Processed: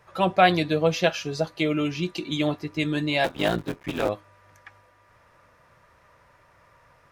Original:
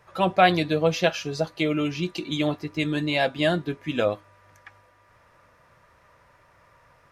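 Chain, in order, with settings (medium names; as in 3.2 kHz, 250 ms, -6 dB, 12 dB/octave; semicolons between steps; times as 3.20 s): 3.24–4.09 s: cycle switcher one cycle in 3, muted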